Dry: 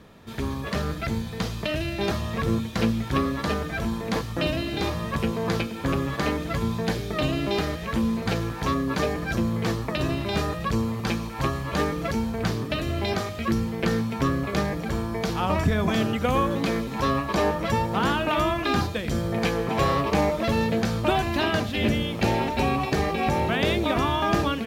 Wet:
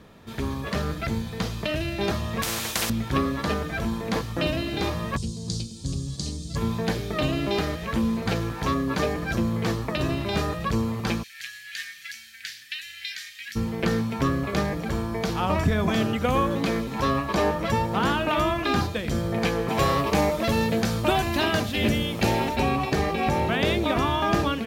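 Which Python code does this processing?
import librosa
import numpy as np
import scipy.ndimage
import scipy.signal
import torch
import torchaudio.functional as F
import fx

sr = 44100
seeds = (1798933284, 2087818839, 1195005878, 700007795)

y = fx.spectral_comp(x, sr, ratio=4.0, at=(2.42, 2.9))
y = fx.curve_eq(y, sr, hz=(130.0, 390.0, 560.0, 810.0, 1500.0, 2300.0, 4400.0, 8700.0, 13000.0), db=(0, -14, -19, -22, -28, -23, 5, 9, -16), at=(5.16, 6.55), fade=0.02)
y = fx.ellip_highpass(y, sr, hz=1700.0, order=4, stop_db=40, at=(11.22, 13.55), fade=0.02)
y = fx.high_shelf(y, sr, hz=5600.0, db=7.5, at=(19.68, 22.56))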